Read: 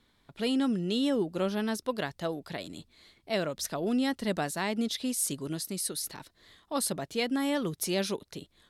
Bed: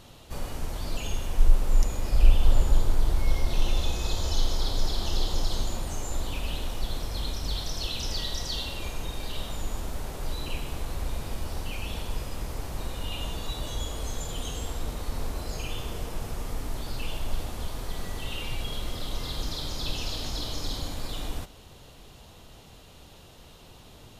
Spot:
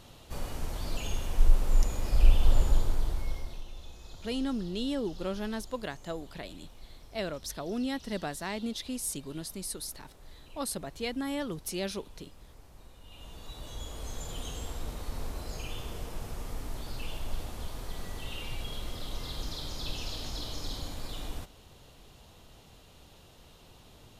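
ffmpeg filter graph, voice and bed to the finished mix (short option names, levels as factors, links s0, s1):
-filter_complex "[0:a]adelay=3850,volume=0.596[s0];[1:a]volume=3.98,afade=t=out:st=2.65:d=0.99:silence=0.141254,afade=t=in:st=13.04:d=1.27:silence=0.188365[s1];[s0][s1]amix=inputs=2:normalize=0"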